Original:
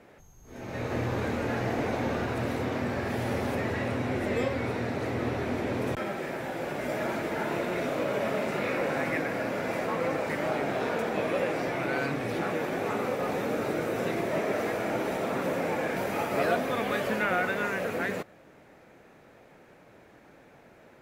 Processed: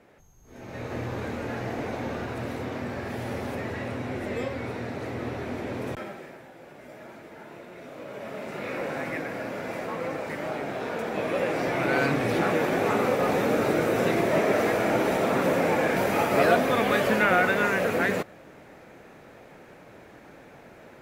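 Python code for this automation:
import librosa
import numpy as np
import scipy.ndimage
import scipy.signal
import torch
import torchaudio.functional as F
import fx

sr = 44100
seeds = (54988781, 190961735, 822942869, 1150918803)

y = fx.gain(x, sr, db=fx.line((5.95, -2.5), (6.5, -14.0), (7.75, -14.0), (8.78, -2.5), (10.83, -2.5), (12.02, 6.0)))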